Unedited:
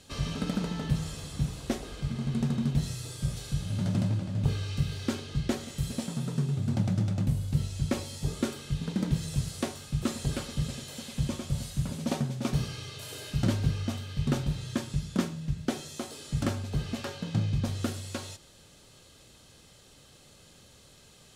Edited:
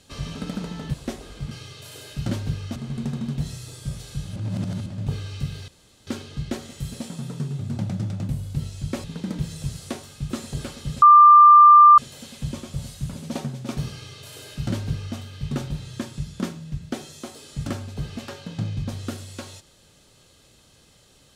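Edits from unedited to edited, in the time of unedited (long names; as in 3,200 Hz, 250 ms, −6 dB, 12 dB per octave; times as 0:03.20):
0:00.94–0:01.56: remove
0:03.73–0:04.23: reverse
0:05.05: splice in room tone 0.39 s
0:08.02–0:08.76: remove
0:10.74: insert tone 1,190 Hz −6.5 dBFS 0.96 s
0:12.68–0:13.93: duplicate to 0:02.13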